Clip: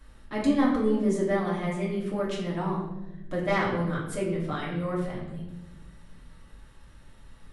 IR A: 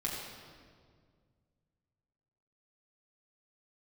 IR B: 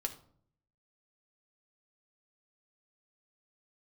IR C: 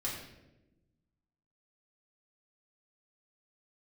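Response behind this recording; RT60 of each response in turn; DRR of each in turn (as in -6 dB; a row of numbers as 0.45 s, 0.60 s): C; 1.9 s, 0.60 s, 1.0 s; -5.0 dB, 4.0 dB, -6.0 dB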